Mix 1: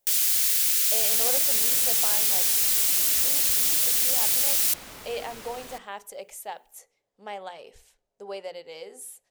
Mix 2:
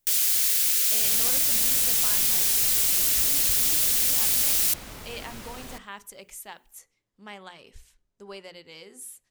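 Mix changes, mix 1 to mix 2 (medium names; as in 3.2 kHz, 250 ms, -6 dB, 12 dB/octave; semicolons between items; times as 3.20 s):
speech: add high-order bell 600 Hz -11 dB 1.2 oct; master: add bass shelf 190 Hz +10 dB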